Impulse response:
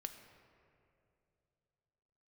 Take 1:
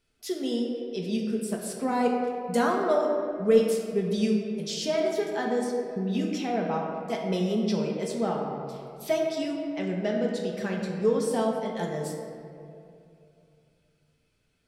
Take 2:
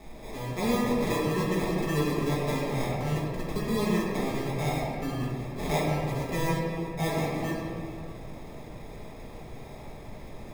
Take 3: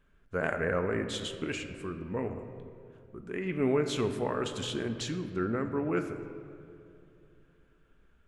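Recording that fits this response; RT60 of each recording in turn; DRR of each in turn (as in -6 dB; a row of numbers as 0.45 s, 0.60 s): 3; 2.6 s, 2.6 s, 2.7 s; -1.5 dB, -8.0 dB, 6.5 dB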